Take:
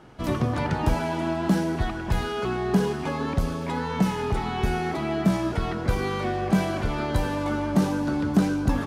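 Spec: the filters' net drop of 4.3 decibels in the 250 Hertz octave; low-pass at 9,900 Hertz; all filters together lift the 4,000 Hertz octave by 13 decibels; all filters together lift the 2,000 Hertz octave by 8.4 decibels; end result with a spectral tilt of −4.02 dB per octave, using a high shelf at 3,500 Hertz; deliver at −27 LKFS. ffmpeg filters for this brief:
ffmpeg -i in.wav -af "lowpass=9900,equalizer=frequency=250:width_type=o:gain=-6.5,equalizer=frequency=2000:width_type=o:gain=6.5,highshelf=frequency=3500:gain=8.5,equalizer=frequency=4000:width_type=o:gain=9,volume=-2.5dB" out.wav

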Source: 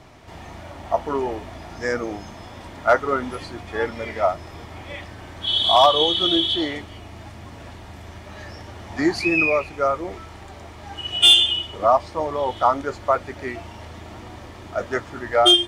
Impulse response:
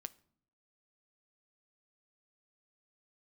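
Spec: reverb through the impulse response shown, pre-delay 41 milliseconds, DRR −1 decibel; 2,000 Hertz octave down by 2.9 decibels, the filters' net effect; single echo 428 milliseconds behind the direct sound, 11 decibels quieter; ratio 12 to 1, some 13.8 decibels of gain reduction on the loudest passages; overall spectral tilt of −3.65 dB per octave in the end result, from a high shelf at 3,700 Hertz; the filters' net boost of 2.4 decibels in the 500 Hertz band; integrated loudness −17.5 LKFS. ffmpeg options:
-filter_complex "[0:a]equalizer=frequency=500:width_type=o:gain=3.5,equalizer=frequency=2000:width_type=o:gain=-7,highshelf=frequency=3700:gain=7,acompressor=threshold=-22dB:ratio=12,aecho=1:1:428:0.282,asplit=2[link_01][link_02];[1:a]atrim=start_sample=2205,adelay=41[link_03];[link_02][link_03]afir=irnorm=-1:irlink=0,volume=5.5dB[link_04];[link_01][link_04]amix=inputs=2:normalize=0,volume=7dB"

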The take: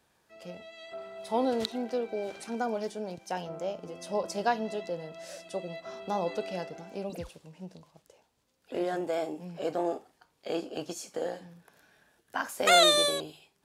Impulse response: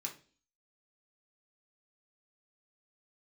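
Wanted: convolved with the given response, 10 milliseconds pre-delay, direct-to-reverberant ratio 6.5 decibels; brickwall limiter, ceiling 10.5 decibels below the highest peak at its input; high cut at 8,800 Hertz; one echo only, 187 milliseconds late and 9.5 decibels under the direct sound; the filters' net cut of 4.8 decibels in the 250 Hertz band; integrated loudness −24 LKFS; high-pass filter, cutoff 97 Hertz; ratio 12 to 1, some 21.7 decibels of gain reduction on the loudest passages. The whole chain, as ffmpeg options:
-filter_complex "[0:a]highpass=97,lowpass=8800,equalizer=frequency=250:width_type=o:gain=-6.5,acompressor=threshold=-39dB:ratio=12,alimiter=level_in=11.5dB:limit=-24dB:level=0:latency=1,volume=-11.5dB,aecho=1:1:187:0.335,asplit=2[link_01][link_02];[1:a]atrim=start_sample=2205,adelay=10[link_03];[link_02][link_03]afir=irnorm=-1:irlink=0,volume=-5.5dB[link_04];[link_01][link_04]amix=inputs=2:normalize=0,volume=21.5dB"

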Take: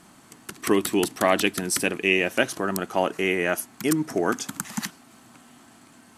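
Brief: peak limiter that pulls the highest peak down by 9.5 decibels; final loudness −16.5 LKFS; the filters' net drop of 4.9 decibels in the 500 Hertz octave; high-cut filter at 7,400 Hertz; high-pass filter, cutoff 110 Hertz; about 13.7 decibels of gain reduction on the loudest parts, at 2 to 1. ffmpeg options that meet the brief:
ffmpeg -i in.wav -af "highpass=110,lowpass=7400,equalizer=frequency=500:width_type=o:gain=-7,acompressor=threshold=-44dB:ratio=2,volume=26dB,alimiter=limit=-3dB:level=0:latency=1" out.wav

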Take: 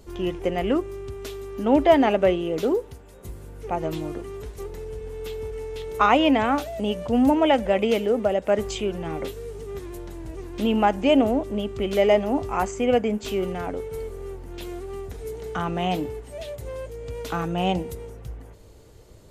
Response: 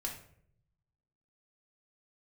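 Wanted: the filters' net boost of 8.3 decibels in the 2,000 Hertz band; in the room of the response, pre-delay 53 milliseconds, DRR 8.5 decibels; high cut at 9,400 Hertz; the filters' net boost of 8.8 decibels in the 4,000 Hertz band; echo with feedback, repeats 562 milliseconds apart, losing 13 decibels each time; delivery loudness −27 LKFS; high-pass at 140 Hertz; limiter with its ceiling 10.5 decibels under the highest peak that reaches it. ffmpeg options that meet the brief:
-filter_complex "[0:a]highpass=140,lowpass=9400,equalizer=frequency=2000:width_type=o:gain=8,equalizer=frequency=4000:width_type=o:gain=9,alimiter=limit=-11.5dB:level=0:latency=1,aecho=1:1:562|1124|1686:0.224|0.0493|0.0108,asplit=2[link_01][link_02];[1:a]atrim=start_sample=2205,adelay=53[link_03];[link_02][link_03]afir=irnorm=-1:irlink=0,volume=-9dB[link_04];[link_01][link_04]amix=inputs=2:normalize=0,volume=-2.5dB"

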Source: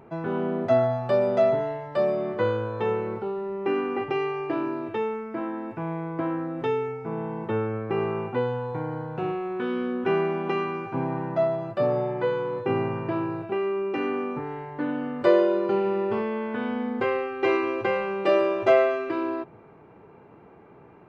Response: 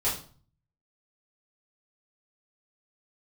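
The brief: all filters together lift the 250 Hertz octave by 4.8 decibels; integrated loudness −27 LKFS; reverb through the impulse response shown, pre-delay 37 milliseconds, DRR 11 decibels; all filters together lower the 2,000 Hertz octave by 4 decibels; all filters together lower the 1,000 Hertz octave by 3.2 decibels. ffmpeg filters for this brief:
-filter_complex "[0:a]equalizer=frequency=250:width_type=o:gain=7,equalizer=frequency=1000:width_type=o:gain=-4,equalizer=frequency=2000:width_type=o:gain=-4,asplit=2[link_01][link_02];[1:a]atrim=start_sample=2205,adelay=37[link_03];[link_02][link_03]afir=irnorm=-1:irlink=0,volume=-20dB[link_04];[link_01][link_04]amix=inputs=2:normalize=0,volume=-2dB"

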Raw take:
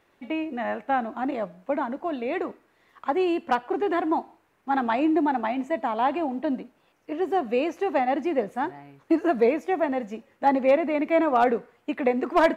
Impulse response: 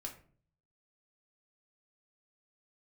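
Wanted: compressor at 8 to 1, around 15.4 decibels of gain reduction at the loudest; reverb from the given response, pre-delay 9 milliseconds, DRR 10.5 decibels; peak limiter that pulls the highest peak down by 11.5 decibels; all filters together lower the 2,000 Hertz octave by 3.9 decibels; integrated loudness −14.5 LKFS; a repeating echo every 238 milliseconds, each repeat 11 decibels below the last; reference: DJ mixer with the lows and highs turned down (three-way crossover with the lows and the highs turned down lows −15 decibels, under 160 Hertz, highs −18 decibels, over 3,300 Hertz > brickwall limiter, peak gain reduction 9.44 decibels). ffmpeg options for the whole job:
-filter_complex "[0:a]equalizer=frequency=2000:width_type=o:gain=-4,acompressor=threshold=-32dB:ratio=8,alimiter=level_in=5.5dB:limit=-24dB:level=0:latency=1,volume=-5.5dB,aecho=1:1:238|476|714:0.282|0.0789|0.0221,asplit=2[link_01][link_02];[1:a]atrim=start_sample=2205,adelay=9[link_03];[link_02][link_03]afir=irnorm=-1:irlink=0,volume=-8dB[link_04];[link_01][link_04]amix=inputs=2:normalize=0,acrossover=split=160 3300:gain=0.178 1 0.126[link_05][link_06][link_07];[link_05][link_06][link_07]amix=inputs=3:normalize=0,volume=28.5dB,alimiter=limit=-6dB:level=0:latency=1"

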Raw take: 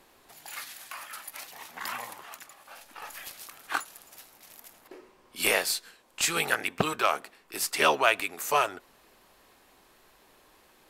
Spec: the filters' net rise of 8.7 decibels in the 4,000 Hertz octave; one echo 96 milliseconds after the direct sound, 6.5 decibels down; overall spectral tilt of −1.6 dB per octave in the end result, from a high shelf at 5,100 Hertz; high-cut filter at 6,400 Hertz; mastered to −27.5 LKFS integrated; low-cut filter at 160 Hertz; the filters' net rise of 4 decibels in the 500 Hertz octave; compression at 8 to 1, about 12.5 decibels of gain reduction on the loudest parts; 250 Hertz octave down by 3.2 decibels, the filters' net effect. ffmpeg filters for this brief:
ffmpeg -i in.wav -af "highpass=160,lowpass=6400,equalizer=frequency=250:width_type=o:gain=-7.5,equalizer=frequency=500:width_type=o:gain=6.5,equalizer=frequency=4000:width_type=o:gain=8.5,highshelf=frequency=5100:gain=8,acompressor=threshold=-28dB:ratio=8,aecho=1:1:96:0.473,volume=6dB" out.wav

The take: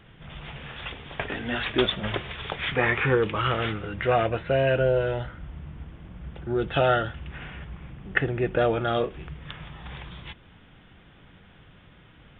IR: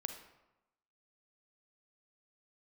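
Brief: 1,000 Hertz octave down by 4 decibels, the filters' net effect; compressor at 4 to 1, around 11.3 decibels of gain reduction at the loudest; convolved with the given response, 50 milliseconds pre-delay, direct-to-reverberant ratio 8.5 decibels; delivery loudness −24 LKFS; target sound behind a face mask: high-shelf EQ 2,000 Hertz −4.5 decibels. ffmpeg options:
-filter_complex "[0:a]equalizer=frequency=1000:width_type=o:gain=-5,acompressor=threshold=-32dB:ratio=4,asplit=2[link_01][link_02];[1:a]atrim=start_sample=2205,adelay=50[link_03];[link_02][link_03]afir=irnorm=-1:irlink=0,volume=-7.5dB[link_04];[link_01][link_04]amix=inputs=2:normalize=0,highshelf=frequency=2000:gain=-4.5,volume=12.5dB"

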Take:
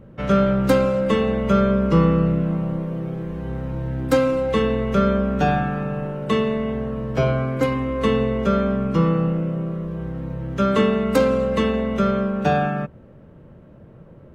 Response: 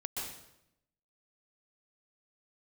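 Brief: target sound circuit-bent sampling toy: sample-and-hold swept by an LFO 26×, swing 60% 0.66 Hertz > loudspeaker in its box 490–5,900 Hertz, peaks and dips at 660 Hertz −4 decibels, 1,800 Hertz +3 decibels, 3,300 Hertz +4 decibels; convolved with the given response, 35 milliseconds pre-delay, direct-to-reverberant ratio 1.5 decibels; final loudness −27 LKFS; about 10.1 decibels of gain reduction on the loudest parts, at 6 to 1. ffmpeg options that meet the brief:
-filter_complex "[0:a]acompressor=threshold=-23dB:ratio=6,asplit=2[link_01][link_02];[1:a]atrim=start_sample=2205,adelay=35[link_03];[link_02][link_03]afir=irnorm=-1:irlink=0,volume=-3dB[link_04];[link_01][link_04]amix=inputs=2:normalize=0,acrusher=samples=26:mix=1:aa=0.000001:lfo=1:lforange=15.6:lforate=0.66,highpass=490,equalizer=frequency=660:width_type=q:width=4:gain=-4,equalizer=frequency=1800:width_type=q:width=4:gain=3,equalizer=frequency=3300:width_type=q:width=4:gain=4,lowpass=frequency=5900:width=0.5412,lowpass=frequency=5900:width=1.3066,volume=3dB"

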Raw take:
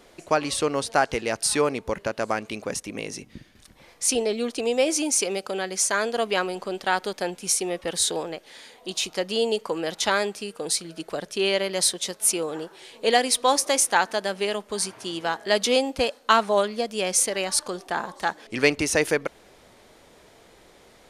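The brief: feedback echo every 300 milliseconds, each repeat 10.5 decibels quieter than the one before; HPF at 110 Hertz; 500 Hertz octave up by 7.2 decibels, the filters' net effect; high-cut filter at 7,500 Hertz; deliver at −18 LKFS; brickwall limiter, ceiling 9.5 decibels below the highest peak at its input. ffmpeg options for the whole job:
ffmpeg -i in.wav -af "highpass=110,lowpass=7500,equalizer=frequency=500:width_type=o:gain=8.5,alimiter=limit=-11dB:level=0:latency=1,aecho=1:1:300|600|900:0.299|0.0896|0.0269,volume=5dB" out.wav

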